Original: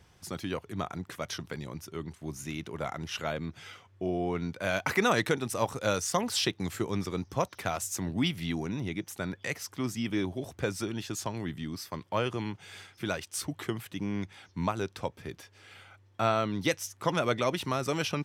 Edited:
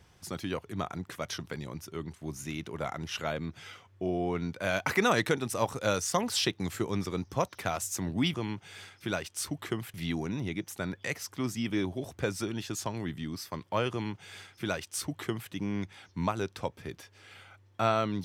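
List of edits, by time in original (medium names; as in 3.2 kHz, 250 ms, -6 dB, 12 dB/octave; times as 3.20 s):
12.31–13.91 s: copy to 8.34 s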